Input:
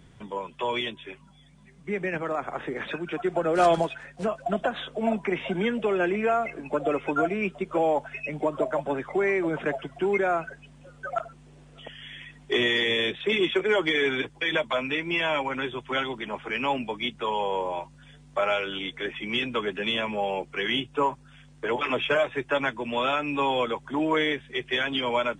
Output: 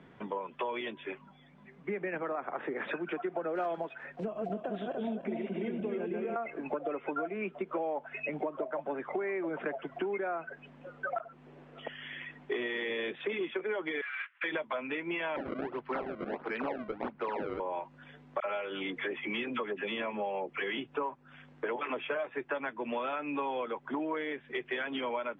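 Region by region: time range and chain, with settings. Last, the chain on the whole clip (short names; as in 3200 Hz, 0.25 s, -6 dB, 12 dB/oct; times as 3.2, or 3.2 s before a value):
4.2–6.36 regenerating reverse delay 0.146 s, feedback 59%, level -1.5 dB + bell 1300 Hz -15 dB 2.4 oct
14.01–14.44 CVSD 16 kbps + steep high-pass 1300 Hz 48 dB/oct + Doppler distortion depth 0.54 ms
15.36–17.6 decimation with a swept rate 29×, swing 160% 1.5 Hz + air absorption 250 m
18.4–20.78 notch 1500 Hz, Q 18 + dispersion lows, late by 49 ms, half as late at 1200 Hz
whole clip: LPF 7000 Hz; three-band isolator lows -20 dB, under 190 Hz, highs -21 dB, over 2600 Hz; compressor 6:1, threshold -36 dBFS; gain +3.5 dB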